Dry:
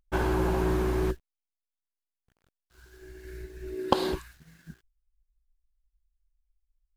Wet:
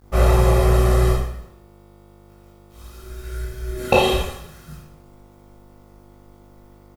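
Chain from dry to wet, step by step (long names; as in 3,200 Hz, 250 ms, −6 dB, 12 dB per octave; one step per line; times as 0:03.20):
high-shelf EQ 9,800 Hz +5 dB
comb filter 1.6 ms, depth 93%
slap from a distant wall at 47 metres, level −25 dB
hum with harmonics 50 Hz, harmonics 30, −56 dBFS −5 dB per octave
bit reduction 11 bits
formants moved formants −3 semitones
convolution reverb RT60 0.75 s, pre-delay 12 ms, DRR −6.5 dB
level +2 dB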